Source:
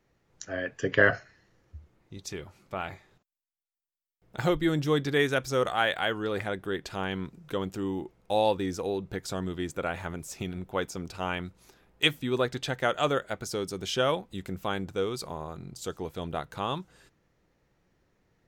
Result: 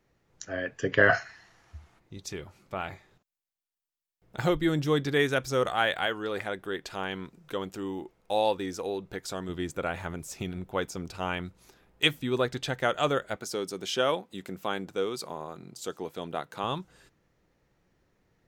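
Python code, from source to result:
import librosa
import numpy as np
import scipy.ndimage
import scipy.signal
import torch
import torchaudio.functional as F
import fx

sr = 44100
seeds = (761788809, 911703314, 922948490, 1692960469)

y = fx.spec_box(x, sr, start_s=1.1, length_s=0.89, low_hz=630.0, high_hz=12000.0, gain_db=11)
y = fx.peak_eq(y, sr, hz=88.0, db=-8.0, octaves=2.9, at=(6.06, 9.49))
y = fx.highpass(y, sr, hz=200.0, slope=12, at=(13.36, 16.64))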